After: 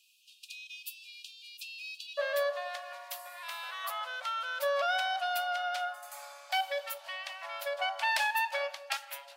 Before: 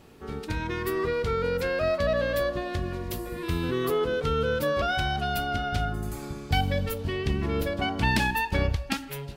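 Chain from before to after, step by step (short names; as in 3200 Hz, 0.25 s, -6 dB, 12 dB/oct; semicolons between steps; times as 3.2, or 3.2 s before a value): brick-wall FIR high-pass 2400 Hz, from 2.17 s 540 Hz; gain -2.5 dB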